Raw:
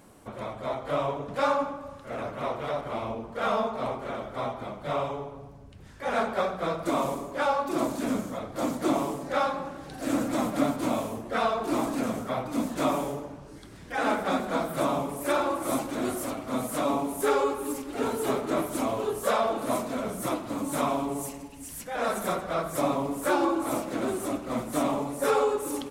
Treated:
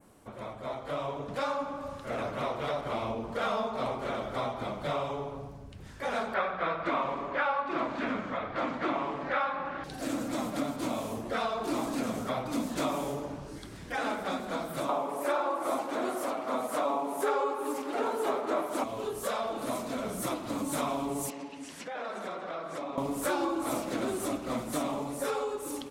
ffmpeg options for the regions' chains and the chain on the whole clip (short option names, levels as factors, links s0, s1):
-filter_complex "[0:a]asettb=1/sr,asplit=3[s0][s1][s2];[s0]atrim=end=6.344[s3];[s1]atrim=start=6.34:end=9.84,asetpts=PTS-STARTPTS,afade=t=in:d=0.004:c=qsin,afade=t=out:st=3.496:d=0.004:c=qsin,lowpass=2700,equalizer=f=1800:t=o:w=2.4:g=12.5[s4];[s2]atrim=start=9.836[s5];[s3][s4]acrossfade=d=0.004:c1=hsin:c2=qsin[s6];[s6][s5]acrossfade=d=0.004:c1=qsin:c2=hsin,asettb=1/sr,asplit=3[s7][s8][s9];[s7]atrim=end=14.894[s10];[s8]atrim=start=14.89:end=18.84,asetpts=PTS-STARTPTS,afade=t=in:d=0.004:c=qsin,afade=t=out:st=3.946:d=0.004:c=qsin,highpass=210,equalizer=f=840:t=o:w=2.9:g=13[s11];[s9]atrim=start=18.836[s12];[s10][s11]acrossfade=d=0.004:c1=hsin:c2=qsin[s13];[s13][s12]acrossfade=d=0.004:c1=qsin:c2=hsin,asettb=1/sr,asplit=3[s14][s15][s16];[s14]atrim=end=21.304[s17];[s15]atrim=start=21.3:end=22.98,asetpts=PTS-STARTPTS,afade=t=in:d=0.004:c=qsin,afade=t=out:st=1.676:d=0.004:c=qsin,highpass=250,lowpass=4100,acompressor=threshold=0.01:ratio=4:attack=3.2:release=140:knee=1:detection=peak[s18];[s16]atrim=start=22.976[s19];[s17][s18]acrossfade=d=0.004:c1=hsin:c2=qsin[s20];[s20][s19]acrossfade=d=0.004:c1=qsin:c2=hsin,dynaudnorm=f=450:g=7:m=3.16,adynamicequalizer=threshold=0.00794:dfrequency=4300:dqfactor=0.84:tfrequency=4300:tqfactor=0.84:attack=5:release=100:ratio=0.375:range=2:mode=boostabove:tftype=bell,acompressor=threshold=0.0447:ratio=2.5,volume=0.562"